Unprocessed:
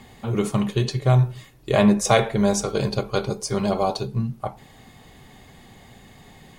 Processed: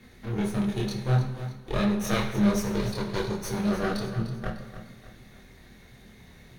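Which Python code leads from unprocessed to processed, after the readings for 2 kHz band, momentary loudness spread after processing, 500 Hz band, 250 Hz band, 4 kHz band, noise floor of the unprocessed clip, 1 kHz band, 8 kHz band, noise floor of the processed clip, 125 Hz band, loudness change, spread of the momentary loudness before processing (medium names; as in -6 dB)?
-4.5 dB, 12 LU, -9.0 dB, -3.5 dB, -6.5 dB, -50 dBFS, -8.5 dB, -9.5 dB, -52 dBFS, -6.0 dB, -6.0 dB, 9 LU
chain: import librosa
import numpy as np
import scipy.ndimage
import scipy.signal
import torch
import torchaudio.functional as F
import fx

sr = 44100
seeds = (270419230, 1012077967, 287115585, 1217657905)

p1 = fx.lower_of_two(x, sr, delay_ms=0.49)
p2 = fx.notch(p1, sr, hz=7700.0, q=5.1)
p3 = fx.rider(p2, sr, range_db=10, speed_s=0.5)
p4 = p2 + F.gain(torch.from_numpy(p3), -2.5).numpy()
p5 = fx.chorus_voices(p4, sr, voices=4, hz=1.5, base_ms=26, depth_ms=3.0, mix_pct=50)
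p6 = p5 + fx.echo_feedback(p5, sr, ms=300, feedback_pct=43, wet_db=-12, dry=0)
p7 = fx.rev_plate(p6, sr, seeds[0], rt60_s=1.0, hf_ratio=0.8, predelay_ms=0, drr_db=5.5)
y = F.gain(torch.from_numpy(p7), -9.0).numpy()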